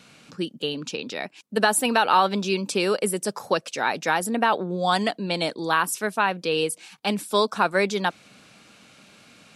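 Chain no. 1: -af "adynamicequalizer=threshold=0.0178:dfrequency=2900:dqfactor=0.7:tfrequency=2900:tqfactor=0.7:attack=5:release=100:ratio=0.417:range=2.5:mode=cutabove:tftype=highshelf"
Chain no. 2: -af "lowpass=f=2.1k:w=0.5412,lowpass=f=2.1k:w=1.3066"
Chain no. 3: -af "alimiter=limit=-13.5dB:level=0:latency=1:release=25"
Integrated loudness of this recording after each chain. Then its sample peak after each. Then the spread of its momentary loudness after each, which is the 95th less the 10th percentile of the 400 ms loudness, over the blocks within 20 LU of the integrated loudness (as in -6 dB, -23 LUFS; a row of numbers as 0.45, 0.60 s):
-24.5, -25.0, -26.5 LUFS; -5.0, -6.0, -13.5 dBFS; 9, 11, 8 LU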